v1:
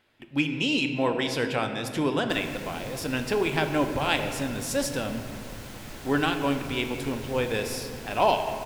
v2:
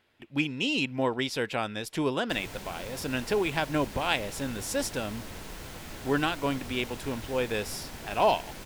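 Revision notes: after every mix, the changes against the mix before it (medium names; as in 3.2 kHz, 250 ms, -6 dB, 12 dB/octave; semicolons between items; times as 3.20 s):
reverb: off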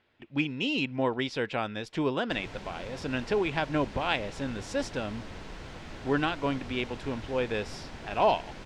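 master: add distance through air 120 m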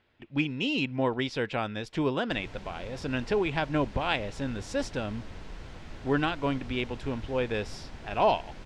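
background -4.0 dB; master: add bass shelf 94 Hz +8 dB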